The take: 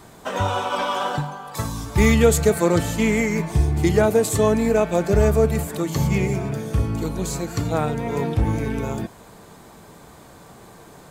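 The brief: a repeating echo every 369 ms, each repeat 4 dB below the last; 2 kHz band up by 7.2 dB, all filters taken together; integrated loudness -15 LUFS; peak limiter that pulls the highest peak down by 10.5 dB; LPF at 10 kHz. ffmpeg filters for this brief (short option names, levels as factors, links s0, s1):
-af "lowpass=10000,equalizer=f=2000:t=o:g=8.5,alimiter=limit=0.251:level=0:latency=1,aecho=1:1:369|738|1107|1476|1845|2214|2583|2952|3321:0.631|0.398|0.25|0.158|0.0994|0.0626|0.0394|0.0249|0.0157,volume=2"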